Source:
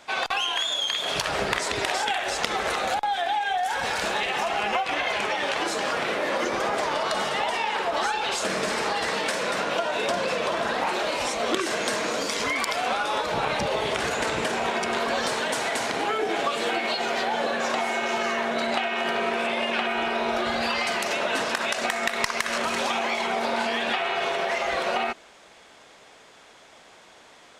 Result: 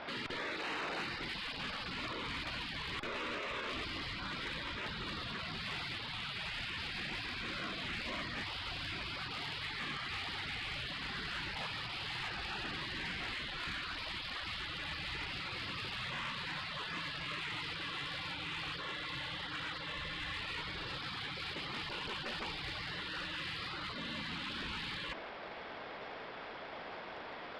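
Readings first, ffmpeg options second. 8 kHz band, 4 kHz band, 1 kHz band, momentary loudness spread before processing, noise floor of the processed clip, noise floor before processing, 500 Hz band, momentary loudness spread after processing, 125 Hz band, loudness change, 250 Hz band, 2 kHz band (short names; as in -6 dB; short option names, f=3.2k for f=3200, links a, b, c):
-23.5 dB, -10.5 dB, -18.5 dB, 1 LU, -47 dBFS, -51 dBFS, -22.0 dB, 2 LU, -4.0 dB, -14.0 dB, -14.0 dB, -12.5 dB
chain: -af "afftfilt=real='re*lt(hypot(re,im),0.0355)':imag='im*lt(hypot(re,im),0.0355)':win_size=1024:overlap=0.75,lowpass=2.5k,aresample=11025,acrusher=bits=3:mode=log:mix=0:aa=0.000001,aresample=44100,asoftclip=type=tanh:threshold=-39dB,volume=6.5dB"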